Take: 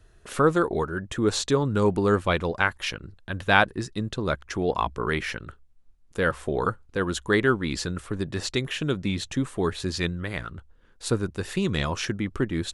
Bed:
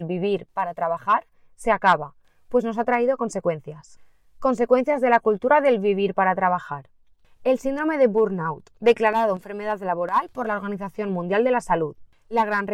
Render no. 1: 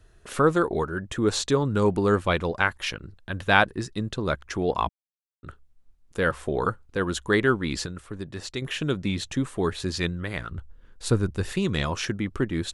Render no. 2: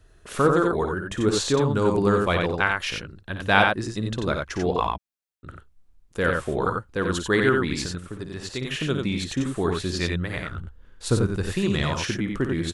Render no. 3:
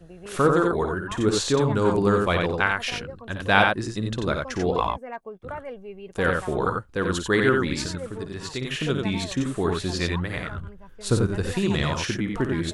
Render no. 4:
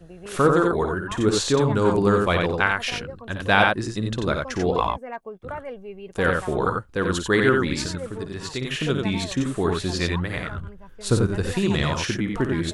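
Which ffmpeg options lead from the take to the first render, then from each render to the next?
-filter_complex "[0:a]asettb=1/sr,asplit=3[a][b][c];[a]atrim=end=10.514[d];[b]atrim=start=10.51:end=11.52,asetpts=PTS-STARTPTS,afade=t=in:d=0.004:c=qsin,afade=t=out:st=1.006:d=0.004:c=qsin,lowshelf=f=120:g=9.5[e];[c]atrim=start=11.516[f];[d][e]acrossfade=d=0.004:c1=hsin:c2=qsin[g];[g][f]acrossfade=d=0.004:c1=qsin:c2=hsin,asplit=5[h][i][j][k][l];[h]atrim=end=4.89,asetpts=PTS-STARTPTS,afade=t=out:st=4.886:d=0.004:c=hsin[m];[i]atrim=start=4.89:end=5.43,asetpts=PTS-STARTPTS,volume=0[n];[j]atrim=start=5.43:end=7.862,asetpts=PTS-STARTPTS,afade=t=in:d=0.004:c=hsin[o];[k]atrim=start=7.858:end=8.622,asetpts=PTS-STARTPTS,volume=-6dB[p];[l]atrim=start=8.618[q];[m][n][o]concat=n=3:v=0:a=1[r];[r][p]acrossfade=d=0.004:c1=hsin:c2=hsin[s];[s][q]acrossfade=d=0.004:c1=hsin:c2=hsin"
-af "aecho=1:1:55.39|90.38:0.355|0.631"
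-filter_complex "[1:a]volume=-18.5dB[a];[0:a][a]amix=inputs=2:normalize=0"
-af "volume=1.5dB,alimiter=limit=-2dB:level=0:latency=1"

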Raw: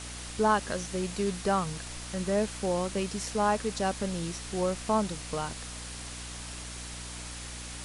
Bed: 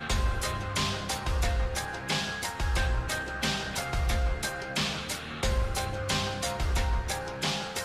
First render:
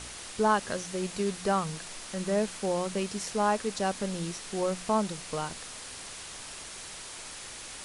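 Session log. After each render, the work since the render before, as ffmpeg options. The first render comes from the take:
-af "bandreject=f=60:t=h:w=4,bandreject=f=120:t=h:w=4,bandreject=f=180:t=h:w=4,bandreject=f=240:t=h:w=4,bandreject=f=300:t=h:w=4"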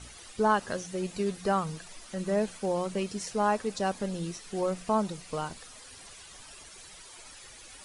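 -af "afftdn=nr=11:nf=-43"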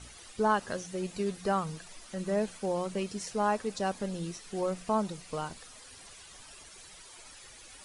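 -af "volume=-2dB"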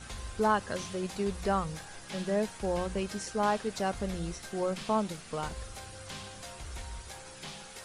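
-filter_complex "[1:a]volume=-14.5dB[a];[0:a][a]amix=inputs=2:normalize=0"

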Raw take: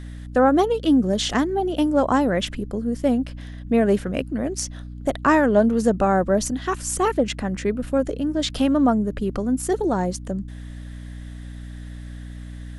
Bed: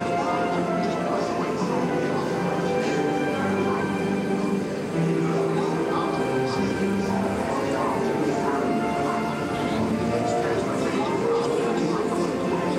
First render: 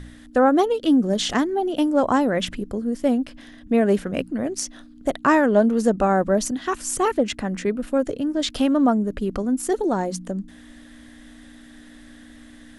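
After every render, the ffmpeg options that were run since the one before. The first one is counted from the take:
-af "bandreject=f=60:t=h:w=4,bandreject=f=120:t=h:w=4,bandreject=f=180:t=h:w=4"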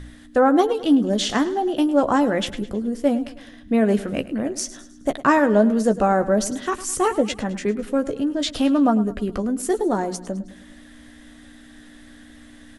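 -filter_complex "[0:a]asplit=2[a][b];[b]adelay=14,volume=-9.5dB[c];[a][c]amix=inputs=2:normalize=0,aecho=1:1:105|210|315|420:0.158|0.0745|0.035|0.0165"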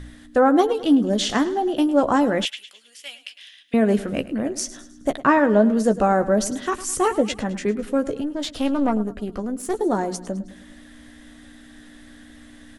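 -filter_complex "[0:a]asettb=1/sr,asplit=3[a][b][c];[a]atrim=end=2.454[d];[b]atrim=start=2.45:end=3.74,asetpts=PTS-STARTPTS,afade=t=in:d=0.004:c=qsin,afade=t=out:st=1.286:d=0.004:c=qsin,highpass=f=2.8k:t=q:w=2.9[e];[c]atrim=start=3.736[f];[d][e]acrossfade=d=0.004:c1=hsin:c2=qsin[g];[g][f]acrossfade=d=0.004:c1=qsin:c2=hsin,asettb=1/sr,asplit=3[h][i][j];[h]atrim=end=5.194[k];[i]atrim=start=5.19:end=5.77,asetpts=PTS-STARTPTS,afade=t=in:d=0.004:c=qsin,afade=t=out:st=0.576:d=0.004:c=qsin,acrossover=split=4200[l][m];[m]acompressor=threshold=-58dB:ratio=4:attack=1:release=60[n];[l][n]amix=inputs=2:normalize=0[o];[j]atrim=start=5.766[p];[k][o]acrossfade=d=0.004:c1=hsin:c2=qsin[q];[q][p]acrossfade=d=0.004:c1=qsin:c2=hsin,asettb=1/sr,asplit=3[r][s][t];[r]atrim=end=8.214[u];[s]atrim=start=8.21:end=9.81,asetpts=PTS-STARTPTS,afade=t=in:d=0.004:c=qsin,afade=t=out:st=1.596:d=0.004:c=qsin,aeval=exprs='(tanh(3.55*val(0)+0.75)-tanh(0.75))/3.55':c=same[v];[t]atrim=start=9.806[w];[u][v]acrossfade=d=0.004:c1=hsin:c2=qsin[x];[x][w]acrossfade=d=0.004:c1=qsin:c2=hsin"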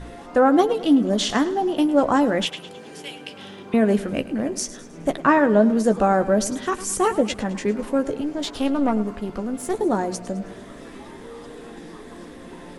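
-filter_complex "[1:a]volume=-17dB[a];[0:a][a]amix=inputs=2:normalize=0"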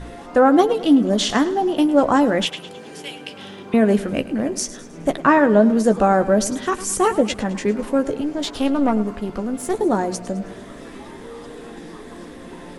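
-af "volume=2.5dB,alimiter=limit=-3dB:level=0:latency=1"

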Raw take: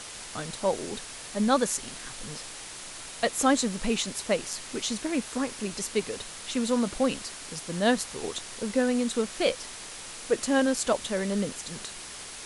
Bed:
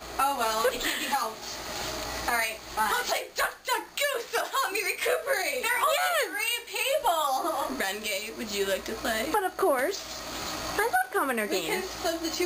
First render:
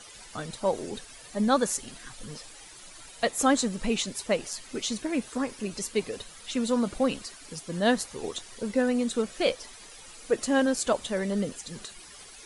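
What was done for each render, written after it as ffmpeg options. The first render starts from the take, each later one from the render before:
-af "afftdn=nr=12:nf=-42"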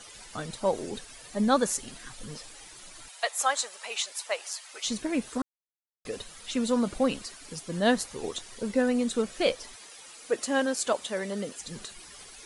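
-filter_complex "[0:a]asettb=1/sr,asplit=3[a][b][c];[a]atrim=end=3.084[d];[b]atrim=start=3.08:end=4.86,asetpts=PTS-STARTPTS,afade=t=in:d=0.004:c=qsin,afade=t=out:st=1.776:d=0.004:c=qsin,highpass=f=660:w=0.5412,highpass=f=660:w=1.3066[e];[c]atrim=start=4.856[f];[d][e]acrossfade=d=0.004:c1=hsin:c2=qsin[g];[g][f]acrossfade=d=0.004:c1=qsin:c2=hsin,asettb=1/sr,asplit=3[h][i][j];[h]atrim=end=9.764[k];[i]atrim=start=9.76:end=11.6,asetpts=PTS-STARTPTS,afade=t=in:d=0.004:c=qsin,afade=t=out:st=1.836:d=0.004:c=qsin,highpass=f=390:p=1[l];[j]atrim=start=11.596[m];[k][l]acrossfade=d=0.004:c1=hsin:c2=qsin[n];[n][m]acrossfade=d=0.004:c1=qsin:c2=hsin,asplit=3[o][p][q];[o]atrim=end=5.42,asetpts=PTS-STARTPTS,afade=t=out:st=5.416:d=0.004:c=hsin[r];[p]atrim=start=5.42:end=6.05,asetpts=PTS-STARTPTS,volume=0[s];[q]atrim=start=6.05,asetpts=PTS-STARTPTS,afade=t=in:d=0.004:c=hsin[t];[r][s][t]concat=n=3:v=0:a=1"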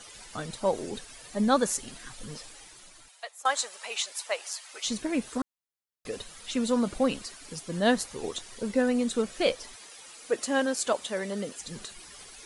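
-filter_complex "[0:a]asplit=2[a][b];[a]atrim=end=3.45,asetpts=PTS-STARTPTS,afade=t=out:st=2.44:d=1.01:silence=0.0944061[c];[b]atrim=start=3.45,asetpts=PTS-STARTPTS,afade=t=in:d=0.004:c=hsin:silence=0.0944061[d];[c][d]concat=n=2:v=0:a=1"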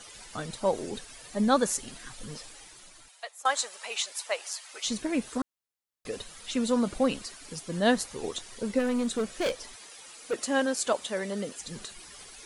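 -filter_complex "[0:a]asplit=3[a][b][c];[a]afade=t=out:st=8.78:d=0.02[d];[b]asoftclip=type=hard:threshold=-24dB,afade=t=in:st=8.78:d=0.02,afade=t=out:st=10.33:d=0.02[e];[c]afade=t=in:st=10.33:d=0.02[f];[d][e][f]amix=inputs=3:normalize=0"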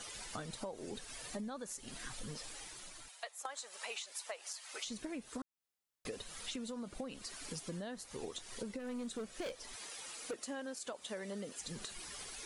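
-af "alimiter=limit=-22.5dB:level=0:latency=1:release=294,acompressor=threshold=-41dB:ratio=6"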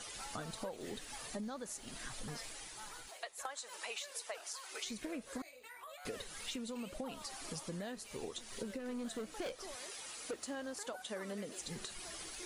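-filter_complex "[1:a]volume=-27dB[a];[0:a][a]amix=inputs=2:normalize=0"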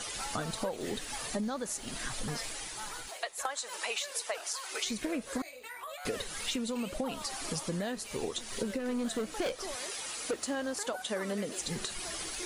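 -af "volume=8.5dB"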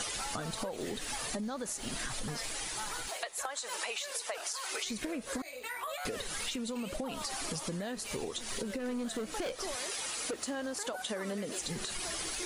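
-filter_complex "[0:a]asplit=2[a][b];[b]alimiter=level_in=5.5dB:limit=-24dB:level=0:latency=1,volume=-5.5dB,volume=-1.5dB[c];[a][c]amix=inputs=2:normalize=0,acompressor=threshold=-34dB:ratio=6"

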